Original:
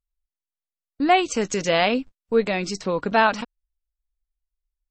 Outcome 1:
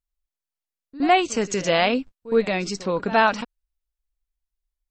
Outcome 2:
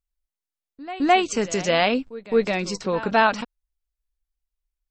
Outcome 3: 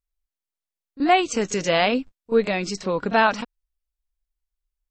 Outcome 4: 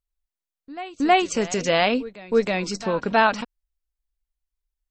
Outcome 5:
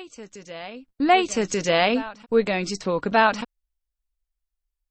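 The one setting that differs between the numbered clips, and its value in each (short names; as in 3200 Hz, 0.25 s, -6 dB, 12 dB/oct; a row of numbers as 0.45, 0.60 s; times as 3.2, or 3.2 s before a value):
reverse echo, time: 66, 213, 31, 319, 1185 ms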